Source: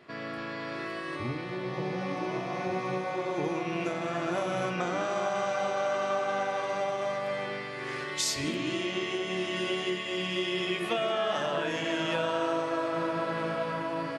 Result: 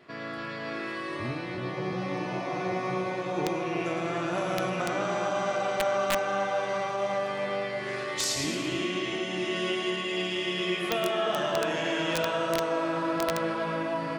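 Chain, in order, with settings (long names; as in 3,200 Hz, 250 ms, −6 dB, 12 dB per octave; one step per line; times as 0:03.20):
pitch vibrato 1 Hz 5.3 cents
echo with a time of its own for lows and highs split 990 Hz, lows 348 ms, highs 111 ms, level −5 dB
wrap-around overflow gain 17 dB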